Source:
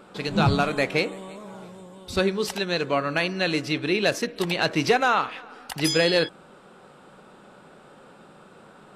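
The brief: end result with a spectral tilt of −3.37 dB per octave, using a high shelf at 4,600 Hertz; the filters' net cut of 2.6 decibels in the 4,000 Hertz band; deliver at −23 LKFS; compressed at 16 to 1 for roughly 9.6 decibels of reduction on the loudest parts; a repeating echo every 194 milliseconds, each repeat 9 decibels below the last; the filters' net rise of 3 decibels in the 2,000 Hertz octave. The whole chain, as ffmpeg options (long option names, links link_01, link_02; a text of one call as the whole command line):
ffmpeg -i in.wav -af "equalizer=frequency=2000:width_type=o:gain=5.5,equalizer=frequency=4000:width_type=o:gain=-3,highshelf=frequency=4600:gain=-4,acompressor=threshold=-24dB:ratio=16,aecho=1:1:194|388|582|776:0.355|0.124|0.0435|0.0152,volume=6.5dB" out.wav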